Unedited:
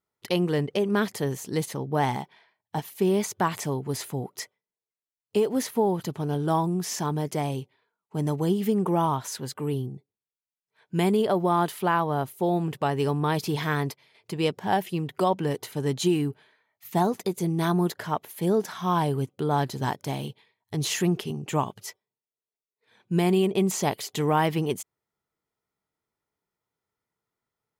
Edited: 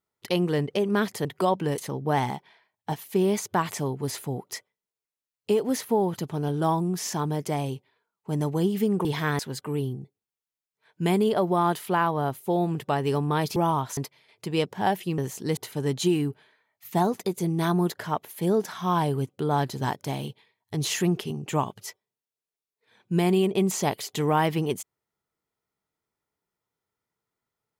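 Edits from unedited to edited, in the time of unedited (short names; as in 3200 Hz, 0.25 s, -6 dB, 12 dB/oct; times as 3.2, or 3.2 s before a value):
1.25–1.64 swap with 15.04–15.57
8.91–9.32 swap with 13.49–13.83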